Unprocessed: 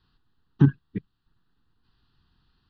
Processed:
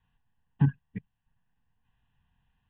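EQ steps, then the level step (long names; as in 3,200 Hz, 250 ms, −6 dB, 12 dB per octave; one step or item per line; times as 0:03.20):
low-pass filter 2,900 Hz 24 dB per octave
low-shelf EQ 140 Hz −5.5 dB
phaser with its sweep stopped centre 1,300 Hz, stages 6
0.0 dB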